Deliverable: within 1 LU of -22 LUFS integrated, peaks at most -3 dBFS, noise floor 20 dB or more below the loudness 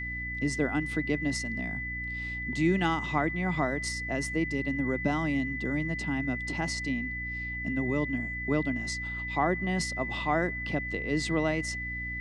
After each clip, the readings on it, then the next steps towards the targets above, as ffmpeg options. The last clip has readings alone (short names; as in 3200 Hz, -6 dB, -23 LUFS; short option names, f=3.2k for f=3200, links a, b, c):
hum 60 Hz; harmonics up to 300 Hz; hum level -37 dBFS; steady tone 2000 Hz; tone level -34 dBFS; loudness -30.0 LUFS; peak -13.5 dBFS; loudness target -22.0 LUFS
-> -af "bandreject=f=60:t=h:w=6,bandreject=f=120:t=h:w=6,bandreject=f=180:t=h:w=6,bandreject=f=240:t=h:w=6,bandreject=f=300:t=h:w=6"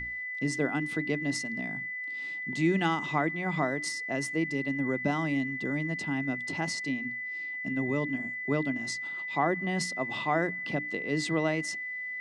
hum none; steady tone 2000 Hz; tone level -34 dBFS
-> -af "bandreject=f=2k:w=30"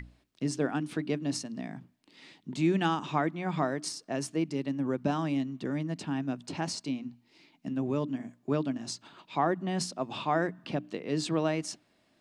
steady tone none; loudness -32.5 LUFS; peak -14.0 dBFS; loudness target -22.0 LUFS
-> -af "volume=10.5dB"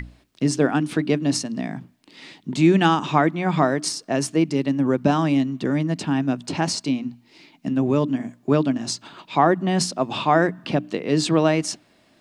loudness -22.0 LUFS; peak -3.5 dBFS; noise floor -59 dBFS